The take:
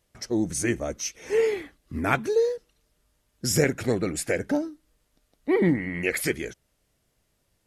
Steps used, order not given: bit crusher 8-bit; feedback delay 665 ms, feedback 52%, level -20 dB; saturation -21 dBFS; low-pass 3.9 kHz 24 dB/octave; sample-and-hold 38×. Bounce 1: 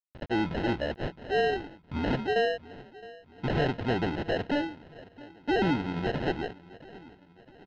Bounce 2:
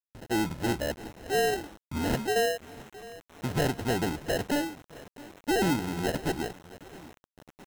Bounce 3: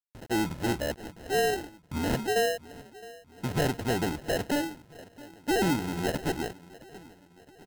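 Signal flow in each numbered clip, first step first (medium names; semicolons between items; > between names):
bit crusher > saturation > feedback delay > sample-and-hold > low-pass; saturation > low-pass > sample-and-hold > feedback delay > bit crusher; saturation > low-pass > bit crusher > feedback delay > sample-and-hold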